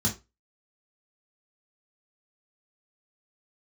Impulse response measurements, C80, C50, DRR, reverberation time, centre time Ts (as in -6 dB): 20.0 dB, 12.0 dB, -3.0 dB, 0.25 s, 17 ms